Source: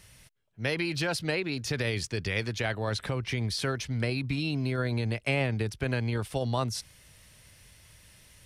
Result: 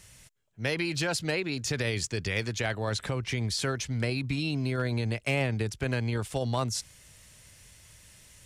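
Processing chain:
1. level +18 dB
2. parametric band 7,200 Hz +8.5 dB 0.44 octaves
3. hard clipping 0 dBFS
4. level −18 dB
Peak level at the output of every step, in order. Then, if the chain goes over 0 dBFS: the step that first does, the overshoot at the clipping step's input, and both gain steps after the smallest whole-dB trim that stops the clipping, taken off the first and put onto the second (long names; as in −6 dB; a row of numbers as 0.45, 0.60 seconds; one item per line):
+4.5, +5.0, 0.0, −18.0 dBFS
step 1, 5.0 dB
step 1 +13 dB, step 4 −13 dB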